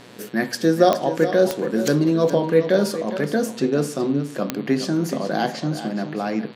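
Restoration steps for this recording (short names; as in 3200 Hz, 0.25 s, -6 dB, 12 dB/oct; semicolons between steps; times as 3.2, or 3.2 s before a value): de-click; de-hum 120.7 Hz, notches 38; inverse comb 0.418 s -11.5 dB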